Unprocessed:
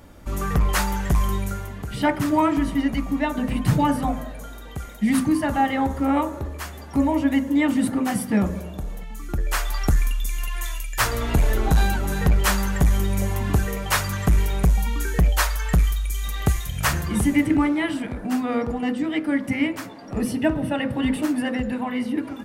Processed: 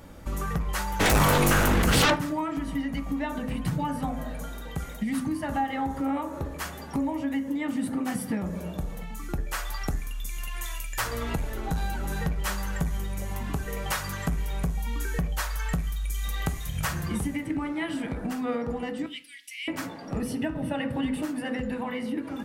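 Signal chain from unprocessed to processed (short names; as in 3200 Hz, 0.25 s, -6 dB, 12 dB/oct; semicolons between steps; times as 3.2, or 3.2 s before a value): 19.06–19.68 steep high-pass 2600 Hz 36 dB/oct; compressor, threshold -27 dBFS, peak gain reduction 13 dB; 0.99–2.14 sine folder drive 18 dB -> 14 dB, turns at -17.5 dBFS; reverb RT60 0.45 s, pre-delay 3 ms, DRR 8.5 dB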